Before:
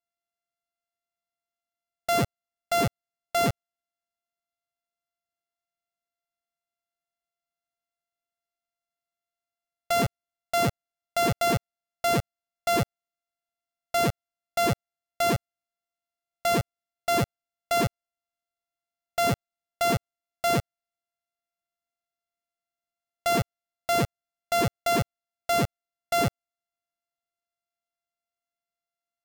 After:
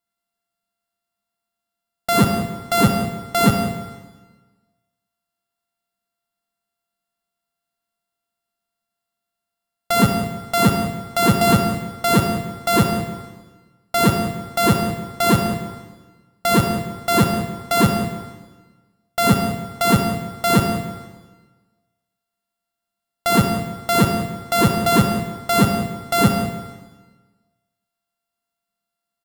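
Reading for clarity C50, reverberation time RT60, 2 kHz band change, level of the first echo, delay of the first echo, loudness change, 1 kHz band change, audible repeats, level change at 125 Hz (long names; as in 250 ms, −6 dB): 4.5 dB, 1.3 s, +7.5 dB, −14.5 dB, 176 ms, +8.0 dB, +7.5 dB, 1, +11.0 dB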